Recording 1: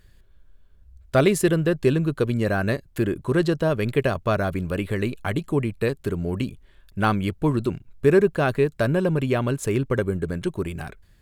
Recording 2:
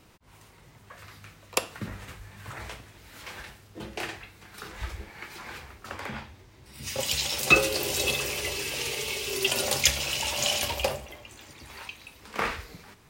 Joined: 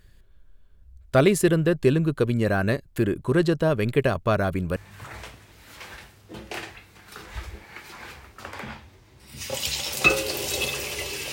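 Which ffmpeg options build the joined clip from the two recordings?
-filter_complex "[0:a]apad=whole_dur=11.32,atrim=end=11.32,atrim=end=4.762[a];[1:a]atrim=start=2.218:end=8.78[b];[a][b]acrossfade=d=0.004:c1=hsin:c2=hsin"

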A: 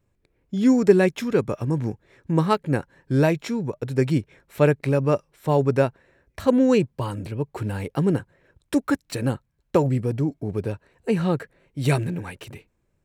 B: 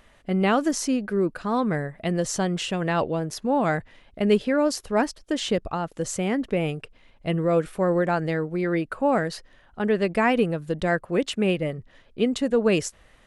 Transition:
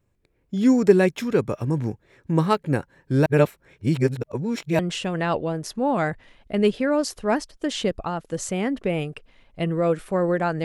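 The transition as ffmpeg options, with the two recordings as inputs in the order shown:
-filter_complex "[0:a]apad=whole_dur=10.64,atrim=end=10.64,asplit=2[a][b];[a]atrim=end=3.262[c];[b]atrim=start=3.258:end=4.792,asetpts=PTS-STARTPTS,areverse[d];[1:a]atrim=start=2.458:end=8.31[e];[c][d]acrossfade=d=0.004:c1=hsin:c2=hsin[f];[f][e]acrossfade=d=0.004:c1=hsin:c2=hsin"

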